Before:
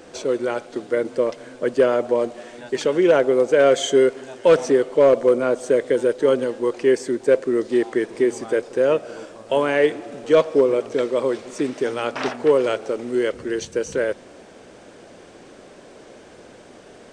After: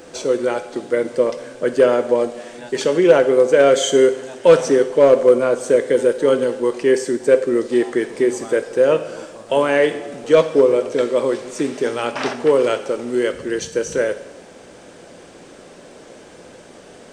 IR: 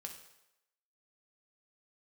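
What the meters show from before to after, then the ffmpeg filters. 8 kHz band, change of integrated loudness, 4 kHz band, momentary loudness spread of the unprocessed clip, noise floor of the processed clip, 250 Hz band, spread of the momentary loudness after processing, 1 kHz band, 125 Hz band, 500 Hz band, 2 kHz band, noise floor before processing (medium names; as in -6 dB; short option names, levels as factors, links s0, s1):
+5.5 dB, +3.0 dB, +3.5 dB, 10 LU, -43 dBFS, +2.5 dB, 10 LU, +2.5 dB, +3.0 dB, +3.0 dB, +3.0 dB, -46 dBFS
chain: -filter_complex "[0:a]asplit=2[s0][s1];[1:a]atrim=start_sample=2205,highshelf=f=6800:g=11[s2];[s1][s2]afir=irnorm=-1:irlink=0,volume=1.58[s3];[s0][s3]amix=inputs=2:normalize=0,volume=0.708"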